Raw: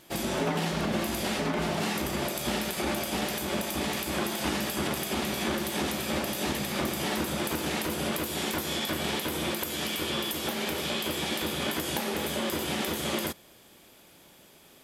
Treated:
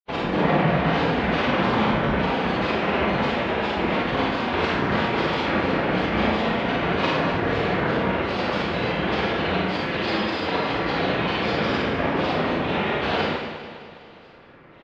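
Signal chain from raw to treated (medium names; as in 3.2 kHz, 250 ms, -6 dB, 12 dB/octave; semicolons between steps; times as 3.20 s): low-pass 2.5 kHz 24 dB/octave; peaking EQ 270 Hz -4.5 dB 0.63 oct; granulator, grains 20 per s, pitch spread up and down by 7 st; on a send: feedback delay 204 ms, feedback 57%, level -11.5 dB; on the sum: Schroeder reverb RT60 0.84 s, combs from 33 ms, DRR -3.5 dB; trim +6 dB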